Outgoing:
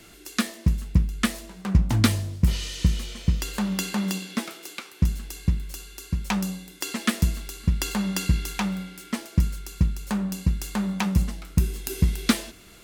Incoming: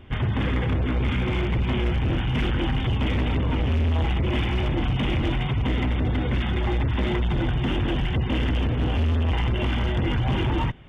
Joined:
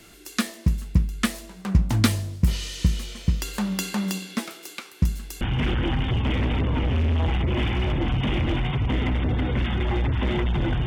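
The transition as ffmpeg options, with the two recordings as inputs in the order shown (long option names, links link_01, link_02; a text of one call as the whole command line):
ffmpeg -i cue0.wav -i cue1.wav -filter_complex "[0:a]apad=whole_dur=10.86,atrim=end=10.86,atrim=end=5.412[link_01];[1:a]atrim=start=2.168:end=7.62[link_02];[link_01][link_02]acrossfade=duration=0.004:curve1=hsin:curve2=hsin" out.wav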